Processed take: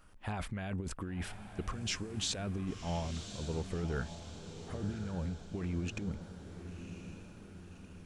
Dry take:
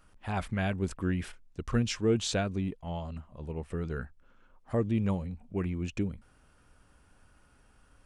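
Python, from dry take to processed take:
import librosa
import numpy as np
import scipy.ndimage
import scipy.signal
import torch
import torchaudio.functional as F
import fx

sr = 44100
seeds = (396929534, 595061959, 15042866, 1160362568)

y = fx.over_compress(x, sr, threshold_db=-34.0, ratio=-1.0)
y = fx.echo_diffused(y, sr, ms=1077, feedback_pct=52, wet_db=-9.5)
y = y * 10.0 ** (-3.0 / 20.0)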